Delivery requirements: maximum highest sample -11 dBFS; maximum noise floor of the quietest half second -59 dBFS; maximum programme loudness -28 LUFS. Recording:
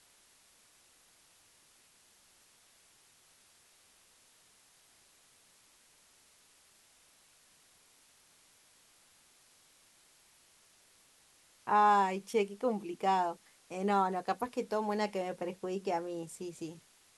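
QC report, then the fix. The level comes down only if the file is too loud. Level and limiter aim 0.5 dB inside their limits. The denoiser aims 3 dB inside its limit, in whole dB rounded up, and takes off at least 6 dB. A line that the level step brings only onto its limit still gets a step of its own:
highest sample -17.5 dBFS: OK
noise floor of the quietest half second -65 dBFS: OK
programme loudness -33.0 LUFS: OK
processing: none

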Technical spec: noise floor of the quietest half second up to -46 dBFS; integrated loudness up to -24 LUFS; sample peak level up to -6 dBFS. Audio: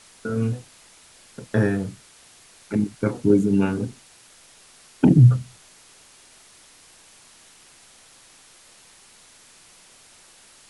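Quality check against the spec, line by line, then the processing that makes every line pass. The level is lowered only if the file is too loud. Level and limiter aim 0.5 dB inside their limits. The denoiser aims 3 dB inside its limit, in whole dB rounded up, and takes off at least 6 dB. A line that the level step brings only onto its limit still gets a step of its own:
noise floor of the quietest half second -51 dBFS: OK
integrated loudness -21.0 LUFS: fail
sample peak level -5.0 dBFS: fail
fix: gain -3.5 dB

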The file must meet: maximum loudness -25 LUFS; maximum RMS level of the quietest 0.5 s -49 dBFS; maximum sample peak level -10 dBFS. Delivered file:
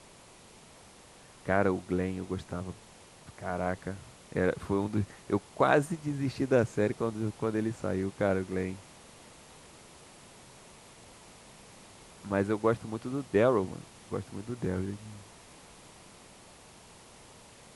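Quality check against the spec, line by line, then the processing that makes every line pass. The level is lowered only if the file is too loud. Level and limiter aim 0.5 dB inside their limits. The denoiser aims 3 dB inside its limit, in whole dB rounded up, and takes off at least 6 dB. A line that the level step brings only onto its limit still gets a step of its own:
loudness -31.5 LUFS: OK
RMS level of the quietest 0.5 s -54 dBFS: OK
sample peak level -11.0 dBFS: OK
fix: none

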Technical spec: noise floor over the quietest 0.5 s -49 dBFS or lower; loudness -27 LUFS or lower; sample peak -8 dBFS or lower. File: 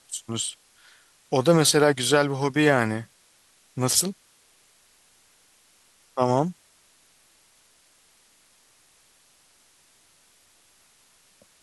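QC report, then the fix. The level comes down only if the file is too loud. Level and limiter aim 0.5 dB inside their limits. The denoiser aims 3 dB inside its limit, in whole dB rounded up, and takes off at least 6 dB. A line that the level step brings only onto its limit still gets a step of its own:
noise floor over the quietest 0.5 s -60 dBFS: OK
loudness -22.5 LUFS: fail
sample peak -6.0 dBFS: fail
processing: gain -5 dB

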